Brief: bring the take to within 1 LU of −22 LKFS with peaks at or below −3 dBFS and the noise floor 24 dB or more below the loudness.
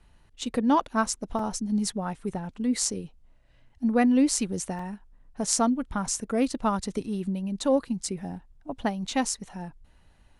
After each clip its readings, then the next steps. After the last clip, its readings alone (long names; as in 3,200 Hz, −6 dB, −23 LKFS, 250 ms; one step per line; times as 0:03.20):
number of dropouts 2; longest dropout 3.7 ms; integrated loudness −27.5 LKFS; sample peak −4.5 dBFS; target loudness −22.0 LKFS
→ repair the gap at 0:01.39/0:04.79, 3.7 ms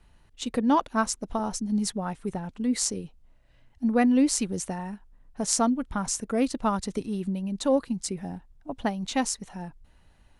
number of dropouts 0; integrated loudness −27.5 LKFS; sample peak −4.5 dBFS; target loudness −22.0 LKFS
→ level +5.5 dB
brickwall limiter −3 dBFS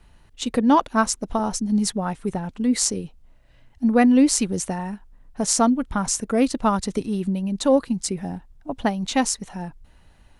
integrated loudness −22.0 LKFS; sample peak −3.0 dBFS; background noise floor −54 dBFS